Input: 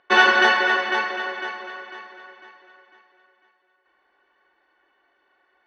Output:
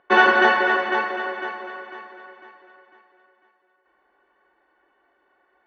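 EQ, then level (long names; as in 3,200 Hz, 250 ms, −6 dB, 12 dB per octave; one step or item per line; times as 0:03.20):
low-pass filter 1,100 Hz 6 dB per octave
+4.0 dB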